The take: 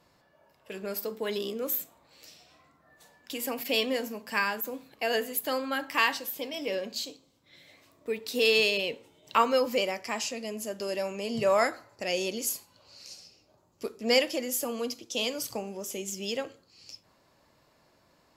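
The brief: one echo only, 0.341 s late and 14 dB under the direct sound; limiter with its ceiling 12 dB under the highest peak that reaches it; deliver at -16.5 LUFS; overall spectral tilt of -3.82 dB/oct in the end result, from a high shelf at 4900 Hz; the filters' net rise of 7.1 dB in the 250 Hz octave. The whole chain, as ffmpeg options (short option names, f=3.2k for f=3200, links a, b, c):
-af "equalizer=f=250:t=o:g=8,highshelf=f=4.9k:g=-3.5,alimiter=limit=-20.5dB:level=0:latency=1,aecho=1:1:341:0.2,volume=15dB"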